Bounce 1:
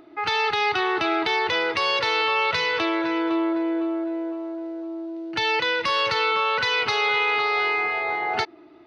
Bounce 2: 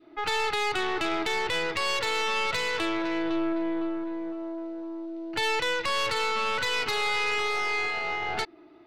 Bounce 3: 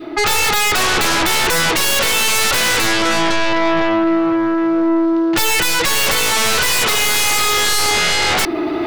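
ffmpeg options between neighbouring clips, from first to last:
ffmpeg -i in.wav -af "aeval=exprs='(tanh(11.2*val(0)+0.65)-tanh(0.65))/11.2':channel_layout=same,adynamicequalizer=threshold=0.0158:dfrequency=800:dqfactor=0.75:tfrequency=800:tqfactor=0.75:attack=5:release=100:ratio=0.375:range=1.5:mode=cutabove:tftype=bell" out.wav
ffmpeg -i in.wav -af "areverse,acompressor=mode=upward:threshold=-31dB:ratio=2.5,areverse,aeval=exprs='0.141*sin(PI/2*5.62*val(0)/0.141)':channel_layout=same,volume=4.5dB" out.wav

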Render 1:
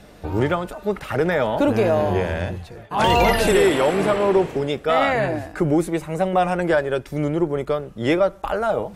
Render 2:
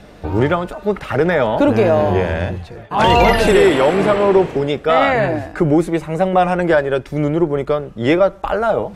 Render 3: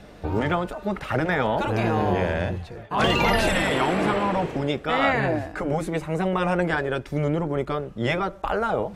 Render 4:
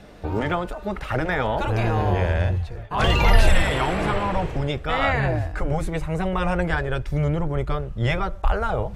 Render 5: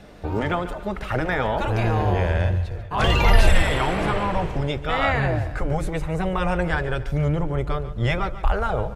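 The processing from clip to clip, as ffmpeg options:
ffmpeg -i in.wav -af "highshelf=frequency=8000:gain=-11.5,volume=5dB" out.wav
ffmpeg -i in.wav -af "afftfilt=real='re*lt(hypot(re,im),1.26)':imag='im*lt(hypot(re,im),1.26)':win_size=1024:overlap=0.75,volume=-4.5dB" out.wav
ffmpeg -i in.wav -af "asubboost=boost=10:cutoff=79" out.wav
ffmpeg -i in.wav -af "aecho=1:1:143|286|429|572:0.188|0.0791|0.0332|0.014" out.wav

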